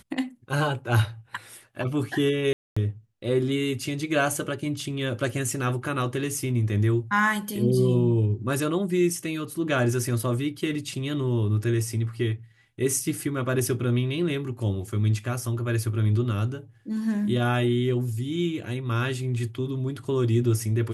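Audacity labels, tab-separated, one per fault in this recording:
2.530000	2.770000	drop-out 235 ms

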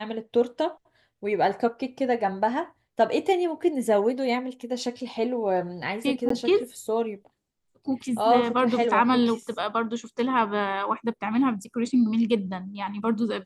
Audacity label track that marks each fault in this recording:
6.290000	6.300000	drop-out 14 ms

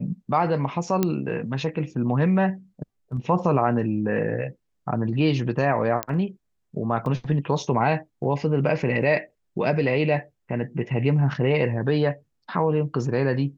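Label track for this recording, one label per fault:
1.030000	1.030000	click −8 dBFS
6.030000	6.030000	click −8 dBFS
7.060000	7.060000	drop-out 2.5 ms

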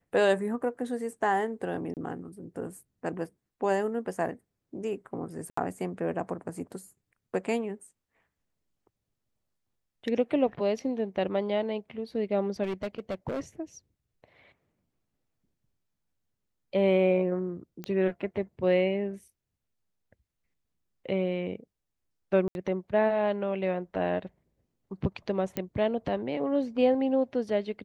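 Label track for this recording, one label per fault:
1.940000	1.970000	drop-out 28 ms
5.500000	5.570000	drop-out 74 ms
12.630000	13.410000	clipping −28 dBFS
17.840000	17.840000	click −22 dBFS
22.480000	22.550000	drop-out 71 ms
25.570000	25.570000	click −17 dBFS

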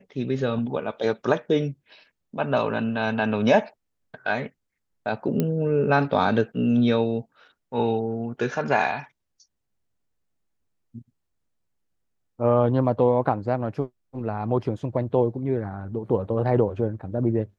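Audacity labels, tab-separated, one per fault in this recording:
5.400000	5.400000	click −11 dBFS

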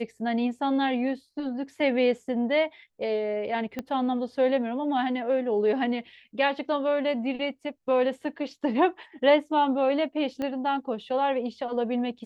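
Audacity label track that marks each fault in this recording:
3.790000	3.790000	click −18 dBFS
10.420000	10.420000	click −20 dBFS

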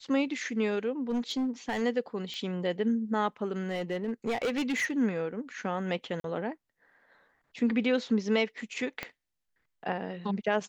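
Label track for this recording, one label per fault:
1.090000	1.820000	clipping −26 dBFS
2.340000	2.340000	click −25 dBFS
3.690000	4.980000	clipping −26 dBFS
6.200000	6.240000	drop-out 42 ms
9.030000	9.030000	click −19 dBFS

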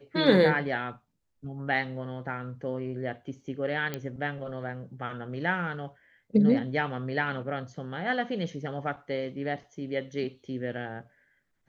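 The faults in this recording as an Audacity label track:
3.940000	3.940000	click −17 dBFS

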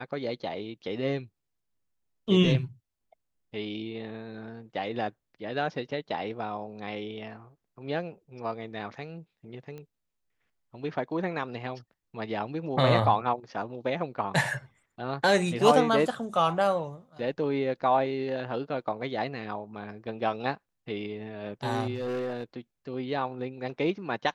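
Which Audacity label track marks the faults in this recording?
9.780000	9.780000	click −30 dBFS
21.940000	22.440000	clipping −28 dBFS

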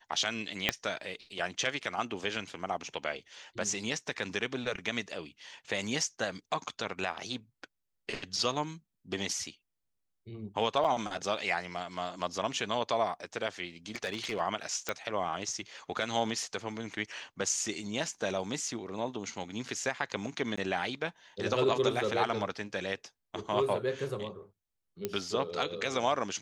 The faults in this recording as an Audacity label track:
0.690000	0.690000	click −10 dBFS
10.840000	10.850000	drop-out 6.5 ms
13.960000	14.410000	clipping −28 dBFS
14.890000	14.890000	click −16 dBFS
20.560000	20.570000	drop-out 15 ms
25.050000	25.050000	click −17 dBFS

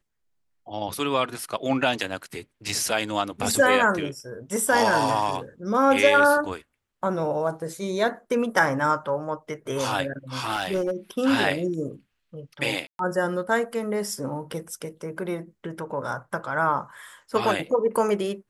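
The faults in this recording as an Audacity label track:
2.690000	2.690000	drop-out 2.5 ms
10.390000	10.910000	clipping −20.5 dBFS
12.870000	12.990000	drop-out 122 ms

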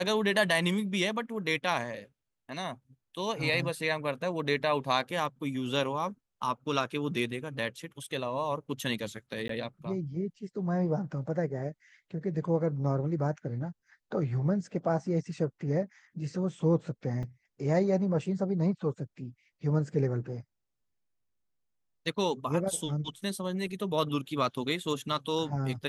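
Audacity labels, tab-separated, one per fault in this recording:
9.480000	9.490000	drop-out
17.230000	17.230000	drop-out 3.9 ms

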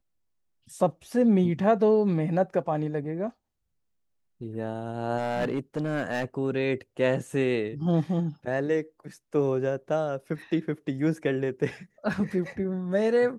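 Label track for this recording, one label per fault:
5.180000	6.250000	clipping −22.5 dBFS

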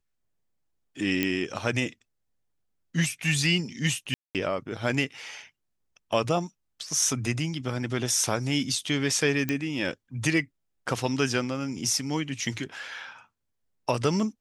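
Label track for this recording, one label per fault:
1.230000	1.230000	click −11 dBFS
4.140000	4.350000	drop-out 208 ms
9.490000	9.490000	click −13 dBFS

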